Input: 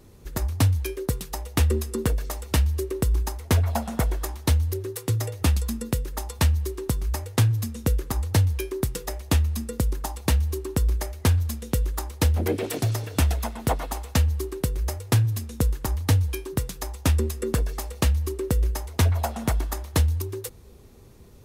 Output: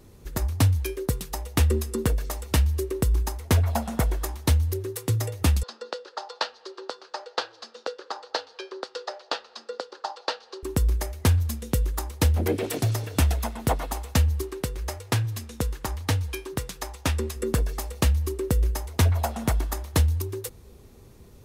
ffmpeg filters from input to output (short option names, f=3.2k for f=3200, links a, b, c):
-filter_complex "[0:a]asettb=1/sr,asplit=3[a][b][c];[a]atrim=end=5.634[d];[b]atrim=start=5.63:end=10.63,asetpts=PTS-STARTPTS,afade=t=in:d=0.004:c=qsin,afade=t=out:st=4.996:d=0.004:c=qsin,highpass=f=480:w=0.5412,highpass=f=480:w=1.3066,equalizer=f=520:t=q:w=4:g=5,equalizer=f=820:t=q:w=4:g=3,equalizer=f=1.4k:t=q:w=4:g=6,equalizer=f=2.2k:t=q:w=4:g=-9,equalizer=f=4.5k:t=q:w=4:g=8,lowpass=f=4.9k:w=0.5412,lowpass=f=4.9k:w=1.3066[e];[c]atrim=start=10.626[f];[d][e]acrossfade=d=0.004:c1=hsin:c2=qsin[g];[g][f]acrossfade=d=0.004:c1=qsin:c2=hsin,asettb=1/sr,asplit=3[h][i][j];[h]atrim=end=14.424[k];[i]atrim=start=14.42:end=17.36,asetpts=PTS-STARTPTS,afade=t=in:d=0.004:c=qsin,afade=t=out:st=2.936:d=0.004:c=qsin,asplit=2[l][m];[m]highpass=f=720:p=1,volume=6dB,asoftclip=type=tanh:threshold=-12dB[n];[l][n]amix=inputs=2:normalize=0,lowpass=f=5.2k:p=1,volume=-6dB[o];[j]atrim=start=17.356[p];[k][o]acrossfade=d=0.004:c1=hsin:c2=qsin[q];[q][p]acrossfade=d=0.004:c1=qsin:c2=hsin"